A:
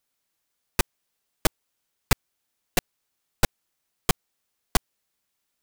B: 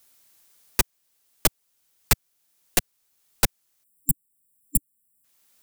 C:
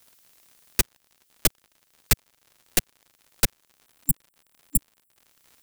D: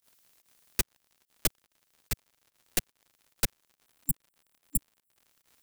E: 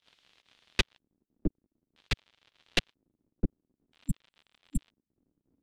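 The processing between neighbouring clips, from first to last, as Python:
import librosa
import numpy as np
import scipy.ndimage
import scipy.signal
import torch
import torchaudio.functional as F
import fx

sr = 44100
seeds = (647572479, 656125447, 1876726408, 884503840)

y1 = fx.spec_erase(x, sr, start_s=3.84, length_s=1.4, low_hz=280.0, high_hz=7300.0)
y1 = fx.high_shelf(y1, sr, hz=5400.0, db=8.5)
y1 = fx.band_squash(y1, sr, depth_pct=40)
y2 = fx.peak_eq(y1, sr, hz=910.0, db=-7.5, octaves=1.0)
y2 = fx.dmg_crackle(y2, sr, seeds[0], per_s=96.0, level_db=-42.0)
y3 = fx.volume_shaper(y2, sr, bpm=144, per_beat=1, depth_db=-21, release_ms=96.0, shape='fast start')
y3 = y3 * 10.0 ** (-6.5 / 20.0)
y4 = fx.filter_lfo_lowpass(y3, sr, shape='square', hz=0.51, low_hz=280.0, high_hz=3400.0, q=2.3)
y4 = y4 * 10.0 ** (3.5 / 20.0)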